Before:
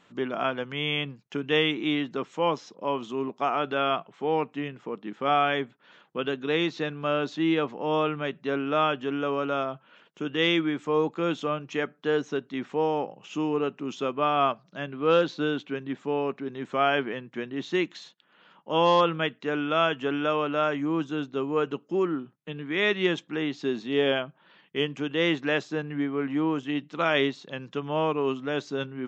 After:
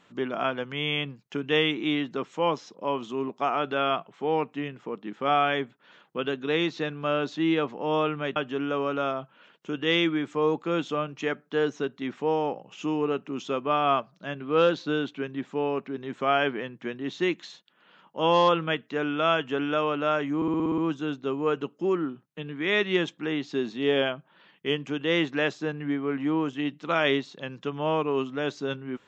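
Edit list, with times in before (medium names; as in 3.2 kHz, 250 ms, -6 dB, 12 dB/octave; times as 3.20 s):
8.36–8.88 s: delete
20.88 s: stutter 0.06 s, 8 plays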